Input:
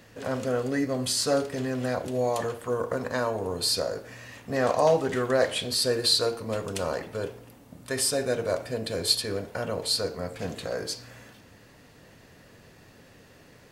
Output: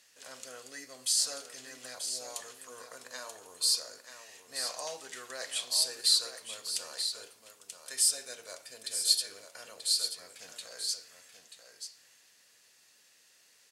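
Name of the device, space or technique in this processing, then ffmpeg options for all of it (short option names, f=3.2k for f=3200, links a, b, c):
piezo pickup straight into a mixer: -filter_complex "[0:a]lowpass=7.3k,aderivative,asettb=1/sr,asplit=3[a][b][c];[a]atrim=end=9.764[d];[b]atrim=start=9.76:end=10.16,asetpts=PTS-STARTPTS,afade=t=in:d=0.004:c=qsin,afade=t=out:st=0.396:d=0.004:c=qsin,bandreject=f=940:w=6[e];[c]atrim=start=10.156[f];[d][e]acrossfade=d=0.004:c1=hsin:c2=qsin[g];[g][f]acrossfade=d=0.004:c1=qsin:c2=hsin,highshelf=f=7.4k:g=9.5,aecho=1:1:934:0.376"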